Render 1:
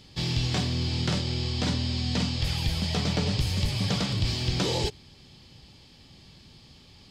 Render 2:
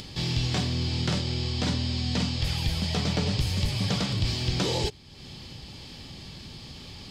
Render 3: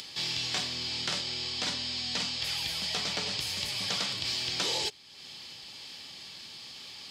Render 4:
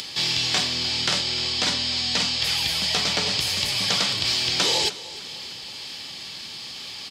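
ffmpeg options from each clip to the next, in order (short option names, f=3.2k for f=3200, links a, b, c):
-af "acompressor=mode=upward:threshold=-32dB:ratio=2.5"
-af "highpass=f=1.5k:p=1,volume=2dB"
-af "aecho=1:1:304|608|912|1216:0.15|0.0673|0.0303|0.0136,volume=9dB"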